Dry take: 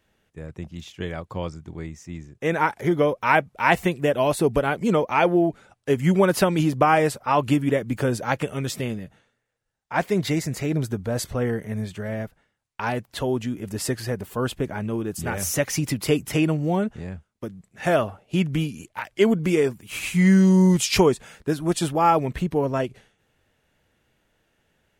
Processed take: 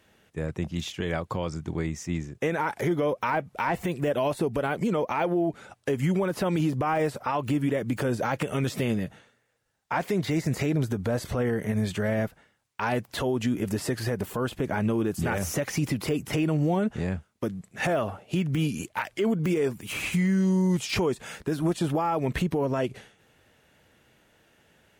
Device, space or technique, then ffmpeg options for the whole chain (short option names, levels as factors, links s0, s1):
podcast mastering chain: -af "highpass=f=89:p=1,deesser=0.9,acompressor=threshold=0.0447:ratio=3,alimiter=level_in=1.06:limit=0.0631:level=0:latency=1:release=73,volume=0.944,volume=2.37" -ar 44100 -c:a libmp3lame -b:a 96k